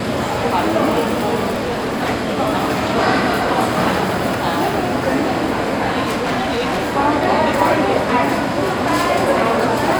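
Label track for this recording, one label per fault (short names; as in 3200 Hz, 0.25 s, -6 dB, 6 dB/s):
1.500000	2.030000	clipped -17 dBFS
6.040000	6.960000	clipped -16 dBFS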